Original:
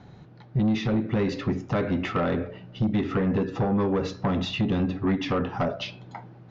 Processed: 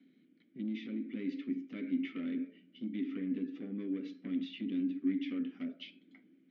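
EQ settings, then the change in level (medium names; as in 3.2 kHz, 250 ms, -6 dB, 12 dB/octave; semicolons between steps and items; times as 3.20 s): vowel filter i; steep high-pass 180 Hz 36 dB/octave; -2.5 dB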